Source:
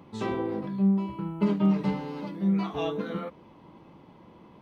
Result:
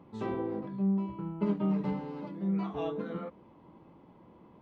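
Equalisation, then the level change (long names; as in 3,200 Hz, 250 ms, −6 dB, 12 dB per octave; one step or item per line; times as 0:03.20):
high-shelf EQ 2,500 Hz −12 dB
mains-hum notches 50/100/150/200 Hz
−3.5 dB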